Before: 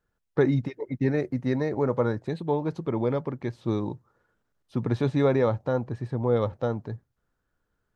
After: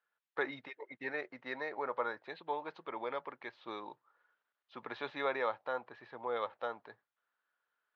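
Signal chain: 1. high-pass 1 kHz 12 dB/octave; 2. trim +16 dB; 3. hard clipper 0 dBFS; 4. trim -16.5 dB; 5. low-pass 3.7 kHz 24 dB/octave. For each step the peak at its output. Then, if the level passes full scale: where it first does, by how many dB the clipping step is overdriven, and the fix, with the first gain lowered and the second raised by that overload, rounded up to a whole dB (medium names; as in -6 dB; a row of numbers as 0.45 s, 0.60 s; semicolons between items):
-19.0 dBFS, -3.0 dBFS, -3.0 dBFS, -19.5 dBFS, -19.5 dBFS; nothing clips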